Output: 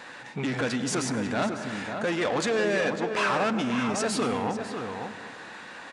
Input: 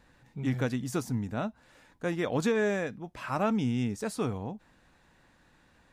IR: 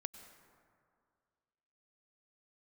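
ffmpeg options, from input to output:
-filter_complex "[0:a]asoftclip=type=tanh:threshold=-25dB,asplit=2[link_01][link_02];[link_02]highpass=frequency=720:poles=1,volume=20dB,asoftclip=type=tanh:threshold=-25dB[link_03];[link_01][link_03]amix=inputs=2:normalize=0,lowpass=frequency=4200:poles=1,volume=-6dB,alimiter=level_in=5.5dB:limit=-24dB:level=0:latency=1:release=279,volume=-5.5dB,highpass=frequency=660:poles=1,asplit=2[link_04][link_05];[link_05]adelay=548.1,volume=-6dB,highshelf=frequency=4000:gain=-12.3[link_06];[link_04][link_06]amix=inputs=2:normalize=0,asplit=2[link_07][link_08];[1:a]atrim=start_sample=2205,lowshelf=frequency=410:gain=11[link_09];[link_08][link_09]afir=irnorm=-1:irlink=0,volume=9.5dB[link_10];[link_07][link_10]amix=inputs=2:normalize=0,aresample=22050,aresample=44100"

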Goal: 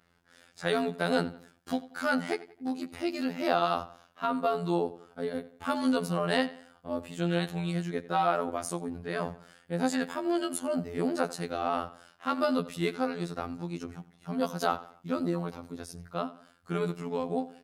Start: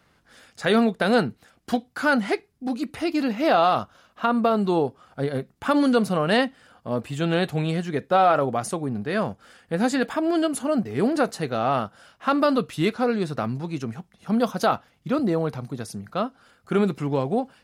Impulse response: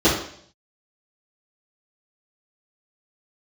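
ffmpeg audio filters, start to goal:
-filter_complex "[0:a]asplit=2[link_01][link_02];[link_02]adelay=91,lowpass=frequency=4800:poles=1,volume=-17dB,asplit=2[link_03][link_04];[link_04]adelay=91,lowpass=frequency=4800:poles=1,volume=0.4,asplit=2[link_05][link_06];[link_06]adelay=91,lowpass=frequency=4800:poles=1,volume=0.4[link_07];[link_01][link_03][link_05][link_07]amix=inputs=4:normalize=0,afftfilt=real='hypot(re,im)*cos(PI*b)':imag='0':win_size=2048:overlap=0.75,adynamicequalizer=threshold=0.00891:dfrequency=4500:dqfactor=0.7:tfrequency=4500:tqfactor=0.7:attack=5:release=100:ratio=0.375:range=2:mode=boostabove:tftype=highshelf,volume=-4dB"

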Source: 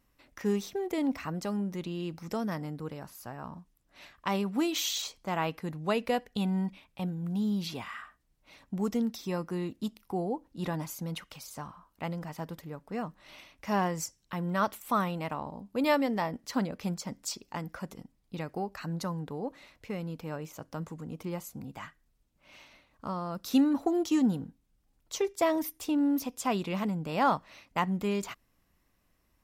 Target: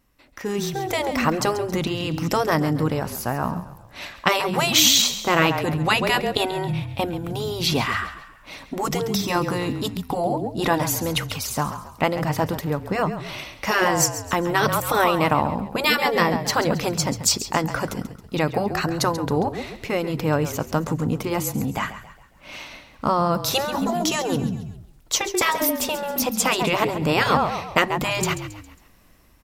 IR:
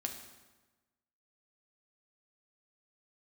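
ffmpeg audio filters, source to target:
-filter_complex "[0:a]asplit=5[link_01][link_02][link_03][link_04][link_05];[link_02]adelay=136,afreqshift=-32,volume=-13dB[link_06];[link_03]adelay=272,afreqshift=-64,volume=-20.3dB[link_07];[link_04]adelay=408,afreqshift=-96,volume=-27.7dB[link_08];[link_05]adelay=544,afreqshift=-128,volume=-35dB[link_09];[link_01][link_06][link_07][link_08][link_09]amix=inputs=5:normalize=0,dynaudnorm=framelen=130:gausssize=11:maxgain=11.5dB,afftfilt=real='re*lt(hypot(re,im),0.562)':imag='im*lt(hypot(re,im),0.562)':win_size=1024:overlap=0.75,volume=5.5dB"

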